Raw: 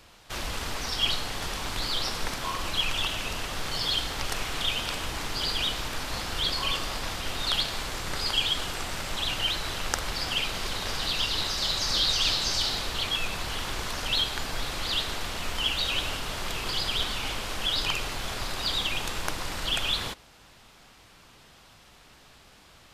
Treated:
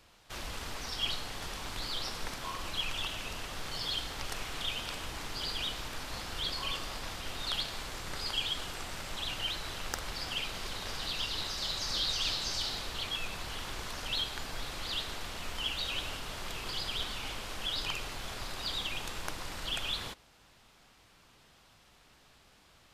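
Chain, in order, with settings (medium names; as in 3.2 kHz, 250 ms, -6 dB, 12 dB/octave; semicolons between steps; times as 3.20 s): wavefolder -7 dBFS; trim -7.5 dB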